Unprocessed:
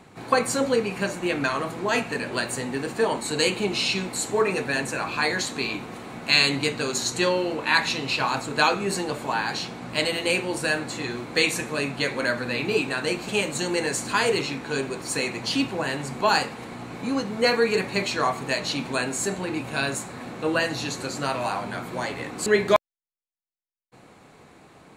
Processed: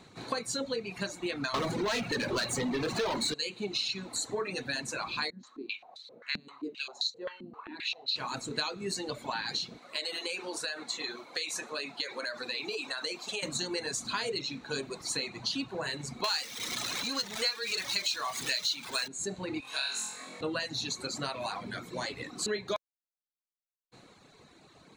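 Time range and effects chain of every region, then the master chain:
1.54–3.34 high shelf 4500 Hz -8 dB + sample leveller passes 5
5.3–8.16 high shelf 2400 Hz +5.5 dB + stepped band-pass 7.6 Hz 210–4100 Hz
9.78–13.43 HPF 400 Hz + compressor 4:1, threshold -26 dBFS
16.24–19.08 zero-crossing step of -24 dBFS + tilt shelf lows -9.5 dB, about 710 Hz
19.6–20.41 HPF 1300 Hz 6 dB/oct + flutter echo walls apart 3.9 m, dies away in 1.1 s
whole clip: reverb removal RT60 1.4 s; thirty-one-band EQ 800 Hz -3 dB, 4000 Hz +11 dB, 6300 Hz +6 dB, 12500 Hz -7 dB; compressor 5:1, threshold -26 dBFS; gain -4.5 dB

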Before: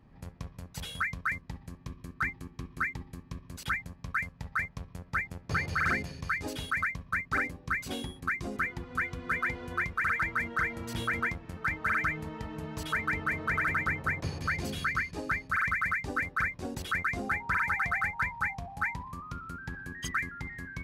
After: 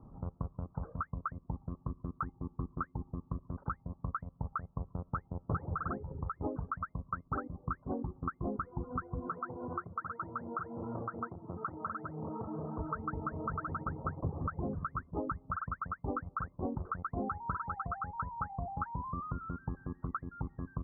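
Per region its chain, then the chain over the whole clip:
5.98–6.4 comb 2.3 ms, depth 41% + compressor 2:1, threshold -36 dBFS
9.27–12.79 HPF 96 Hz 24 dB/oct + core saturation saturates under 1700 Hz
whole clip: compressor 2:1, threshold -38 dBFS; steep low-pass 1300 Hz 72 dB/oct; reverb removal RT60 0.65 s; gain +5 dB

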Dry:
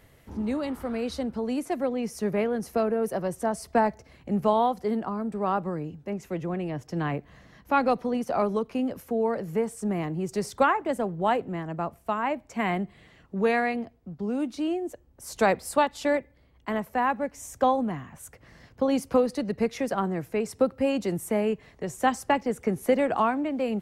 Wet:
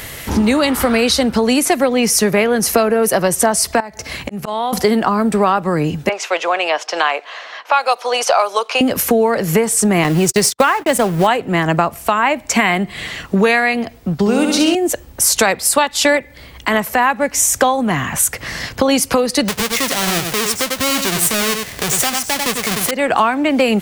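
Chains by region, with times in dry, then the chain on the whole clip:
3.8–4.73 HPF 42 Hz + auto swell 0.584 s + compressor 3:1, threshold -42 dBFS
6.09–8.81 low-pass opened by the level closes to 2500 Hz, open at -19.5 dBFS + HPF 570 Hz 24 dB/oct + bell 1900 Hz -6.5 dB 0.39 oct
10.04–11.27 G.711 law mismatch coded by mu + gate -37 dBFS, range -54 dB
14.16–14.75 bell 250 Hz -3.5 dB 0.4 oct + flutter echo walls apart 11.5 m, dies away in 0.97 s
19.48–22.91 half-waves squared off + echo 94 ms -10.5 dB
whole clip: tilt shelf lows -7 dB, about 1300 Hz; compressor 6:1, threshold -39 dBFS; maximiser +28.5 dB; gain -1 dB

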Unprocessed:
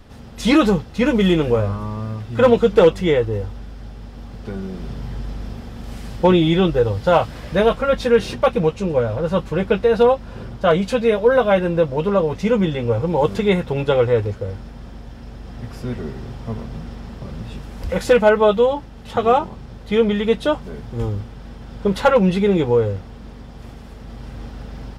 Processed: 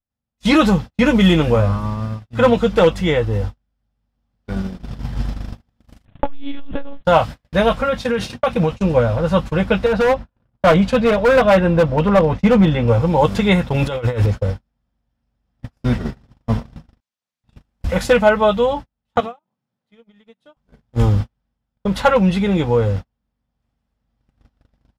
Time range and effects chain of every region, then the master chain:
6.05–7.05 monotone LPC vocoder at 8 kHz 280 Hz + core saturation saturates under 140 Hz
7.83–8.71 HPF 66 Hz + compressor 5:1, threshold -16 dBFS
9.86–12.88 high shelf 4300 Hz -12 dB + hard clip -12.5 dBFS
13.74–14.26 high shelf 6500 Hz +7 dB + notch 790 Hz, Q 21 + negative-ratio compressor -23 dBFS
17–17.44 differentiator + Doppler distortion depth 0.79 ms
19.2–20.57 HPF 140 Hz 24 dB/oct + compressor 16:1, threshold -27 dBFS
whole clip: gate -26 dBFS, range -46 dB; bell 400 Hz -9.5 dB 0.49 oct; AGC; gain -1 dB

